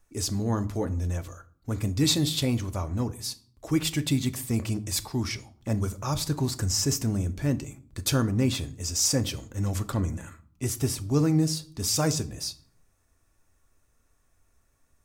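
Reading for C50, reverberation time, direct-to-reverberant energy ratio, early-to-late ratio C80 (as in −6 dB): 19.0 dB, 0.50 s, 10.5 dB, 22.5 dB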